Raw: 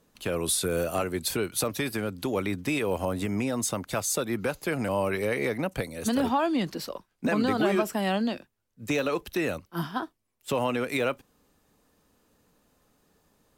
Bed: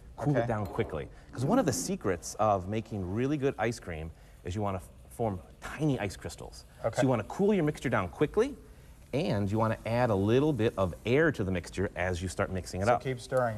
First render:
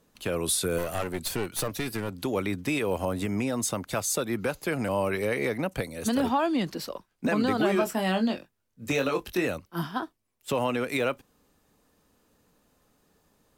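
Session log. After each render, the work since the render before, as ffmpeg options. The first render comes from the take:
-filter_complex "[0:a]asettb=1/sr,asplit=3[a][b][c];[a]atrim=end=0.784[d];[b]atrim=start=0.78:end=2.17,asetpts=PTS-STARTPTS,afade=t=in:d=0.004:c=qsin,afade=t=out:st=1.386:d=0.004:c=qsin,aeval=exprs='clip(val(0),-1,0.0211)':c=same[e];[c]atrim=start=2.166[f];[d][e]acrossfade=d=0.004:c1=hsin:c2=qsin[g];[g][f]acrossfade=d=0.004:c1=qsin:c2=hsin,asettb=1/sr,asplit=3[h][i][j];[h]atrim=end=7.794[k];[i]atrim=start=7.79:end=9.47,asetpts=PTS-STARTPTS,afade=t=in:d=0.004:c=qsin,afade=t=out:st=1.676:d=0.004:c=qsin,asplit=2[l][m];[m]adelay=22,volume=-6dB[n];[l][n]amix=inputs=2:normalize=0,atrim=end_sample=74088[o];[j]atrim=start=9.466[p];[k][o]acrossfade=d=0.004:c1=hsin:c2=qsin[q];[q][p]acrossfade=d=0.004:c1=qsin:c2=hsin"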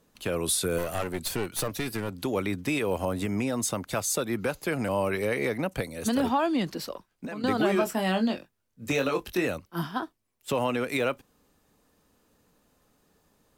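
-filter_complex "[0:a]asettb=1/sr,asplit=3[a][b][c];[a]atrim=end=6.954[d];[b]atrim=start=6.95:end=7.44,asetpts=PTS-STARTPTS,afade=t=in:d=0.004:c=qsin,afade=t=out:st=0.486:d=0.004:c=qsin,acompressor=threshold=-33dB:ratio=6:attack=3.2:release=140:knee=1:detection=peak[e];[c]atrim=start=7.436[f];[d][e]acrossfade=d=0.004:c1=hsin:c2=qsin[g];[g][f]acrossfade=d=0.004:c1=qsin:c2=hsin"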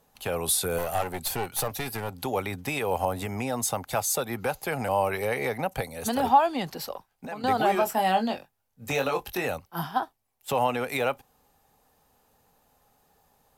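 -af "equalizer=f=200:t=o:w=0.33:g=-6,equalizer=f=315:t=o:w=0.33:g=-10,equalizer=f=800:t=o:w=0.33:g=12,equalizer=f=12.5k:t=o:w=0.33:g=8"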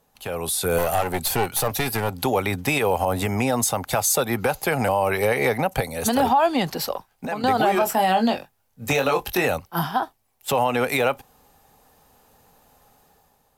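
-af "alimiter=limit=-19dB:level=0:latency=1:release=93,dynaudnorm=f=130:g=9:m=8.5dB"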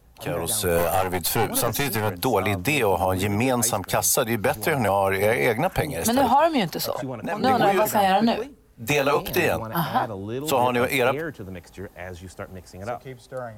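-filter_complex "[1:a]volume=-5dB[a];[0:a][a]amix=inputs=2:normalize=0"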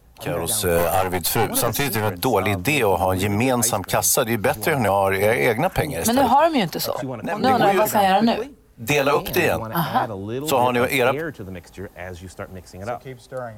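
-af "volume=2.5dB"

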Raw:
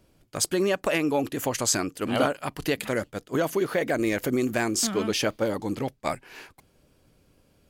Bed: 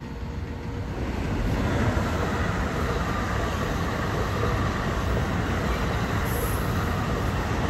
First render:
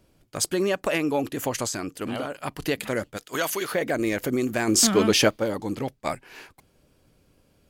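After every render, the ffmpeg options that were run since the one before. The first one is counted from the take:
-filter_complex "[0:a]asettb=1/sr,asplit=3[a][b][c];[a]atrim=end=1.664[d];[b]atrim=start=1.66:end=2.33,asetpts=PTS-STARTPTS,afade=t=in:d=0.004:c=qsin,afade=t=out:st=0.666:d=0.004:c=qsin,acompressor=threshold=-25dB:ratio=12:attack=3.2:release=140:knee=1:detection=peak[e];[c]atrim=start=2.326[f];[d][e]acrossfade=d=0.004:c1=hsin:c2=qsin[g];[g][f]acrossfade=d=0.004:c1=qsin:c2=hsin,asplit=3[h][i][j];[h]afade=t=out:st=3.16:d=0.02[k];[i]tiltshelf=f=800:g=-9.5,afade=t=in:st=3.16:d=0.02,afade=t=out:st=3.71:d=0.02[l];[j]afade=t=in:st=3.71:d=0.02[m];[k][l][m]amix=inputs=3:normalize=0,asplit=3[n][o][p];[n]afade=t=out:st=4.67:d=0.02[q];[o]acontrast=75,afade=t=in:st=4.67:d=0.02,afade=t=out:st=5.28:d=0.02[r];[p]afade=t=in:st=5.28:d=0.02[s];[q][r][s]amix=inputs=3:normalize=0"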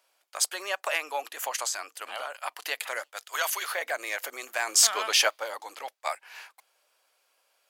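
-af "highpass=f=710:w=0.5412,highpass=f=710:w=1.3066"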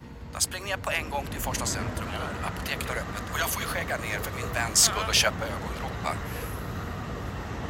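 -filter_complex "[1:a]volume=-8.5dB[a];[0:a][a]amix=inputs=2:normalize=0"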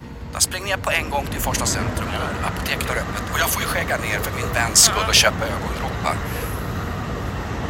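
-af "volume=8dB,alimiter=limit=-1dB:level=0:latency=1"

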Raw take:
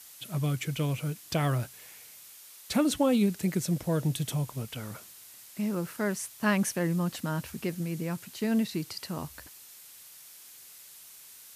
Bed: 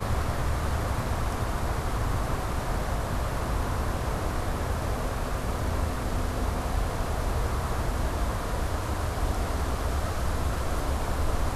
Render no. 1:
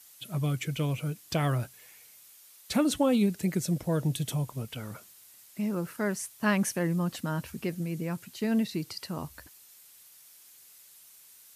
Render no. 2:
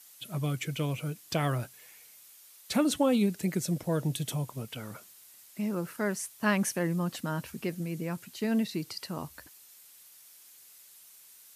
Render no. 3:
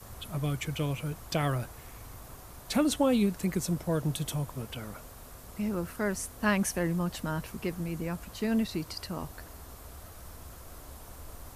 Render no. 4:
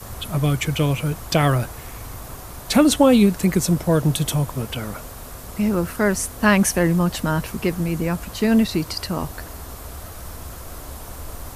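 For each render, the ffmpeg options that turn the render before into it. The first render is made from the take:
-af "afftdn=nr=6:nf=-51"
-af "highpass=f=130:p=1"
-filter_complex "[1:a]volume=-19.5dB[a];[0:a][a]amix=inputs=2:normalize=0"
-af "volume=11.5dB,alimiter=limit=-3dB:level=0:latency=1"

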